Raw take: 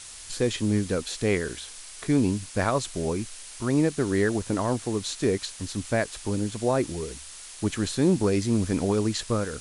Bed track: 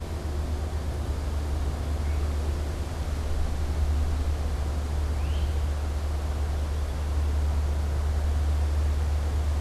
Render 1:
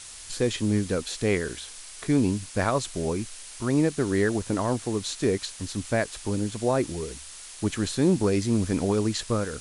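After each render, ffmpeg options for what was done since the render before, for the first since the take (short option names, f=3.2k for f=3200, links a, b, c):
-af anull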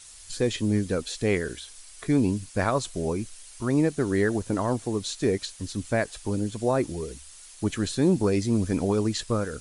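-af "afftdn=nr=8:nf=-43"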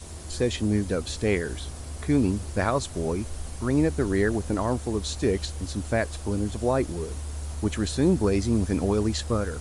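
-filter_complex "[1:a]volume=-8.5dB[a];[0:a][a]amix=inputs=2:normalize=0"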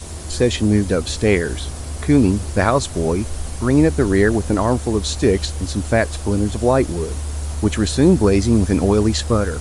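-af "volume=8.5dB"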